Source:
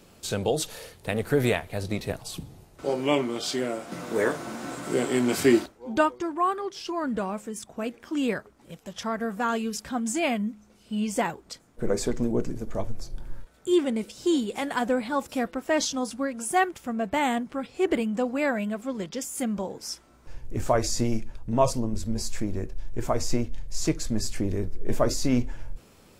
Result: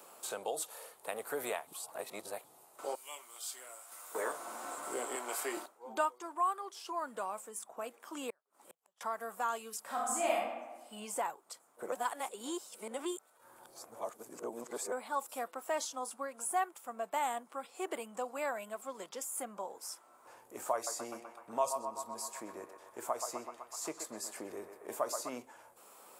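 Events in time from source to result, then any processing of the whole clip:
0:01.67–0:02.44: reverse
0:02.95–0:04.15: first difference
0:05.15–0:05.57: high-pass filter 440 Hz
0:08.30–0:09.01: gate with flip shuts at −34 dBFS, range −37 dB
0:09.80–0:10.34: thrown reverb, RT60 1 s, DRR −6 dB
0:11.92–0:14.92: reverse
0:20.74–0:25.30: feedback echo with a band-pass in the loop 126 ms, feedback 68%, band-pass 1,100 Hz, level −5.5 dB
whole clip: high-pass filter 910 Hz 12 dB per octave; flat-topped bell 3,100 Hz −11.5 dB 2.3 octaves; multiband upward and downward compressor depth 40%; level −1.5 dB

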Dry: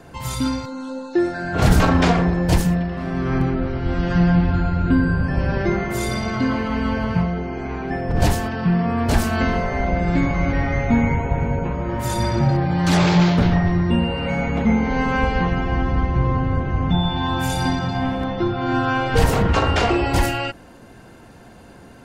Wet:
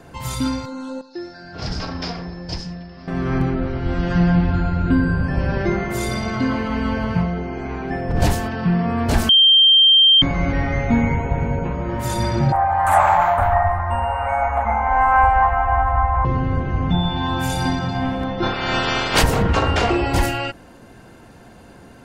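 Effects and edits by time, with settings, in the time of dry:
0:01.01–0:03.08: transistor ladder low-pass 5,300 Hz, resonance 85%
0:09.29–0:10.22: beep over 3,160 Hz −8.5 dBFS
0:12.52–0:16.25: drawn EQ curve 100 Hz 0 dB, 150 Hz −26 dB, 260 Hz −16 dB, 400 Hz −21 dB, 710 Hz +13 dB, 1,200 Hz +9 dB, 2,000 Hz 0 dB, 3,200 Hz −14 dB, 5,200 Hz −24 dB, 8,600 Hz +7 dB
0:18.42–0:19.21: ceiling on every frequency bin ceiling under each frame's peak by 24 dB

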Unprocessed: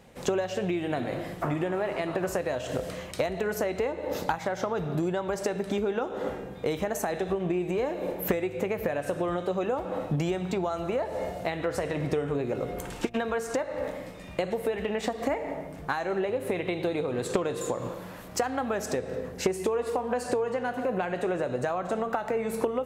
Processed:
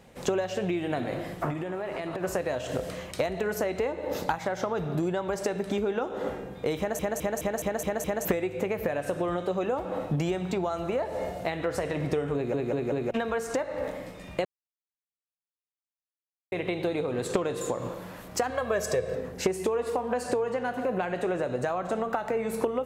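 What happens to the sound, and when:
0:01.50–0:02.24: downward compressor 5 to 1, threshold −29 dBFS
0:06.78: stutter in place 0.21 s, 7 plays
0:12.35: stutter in place 0.19 s, 4 plays
0:14.45–0:16.52: silence
0:18.50–0:19.15: comb filter 1.8 ms, depth 77%

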